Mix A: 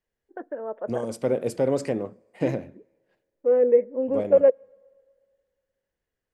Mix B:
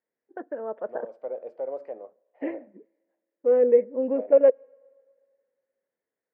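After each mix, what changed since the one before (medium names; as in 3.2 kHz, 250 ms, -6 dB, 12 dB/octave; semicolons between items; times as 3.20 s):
second voice: add ladder band-pass 710 Hz, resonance 50%; master: add distance through air 52 m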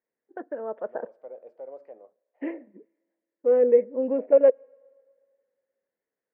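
second voice -8.5 dB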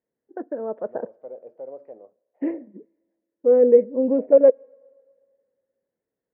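master: add tilt EQ -4 dB/octave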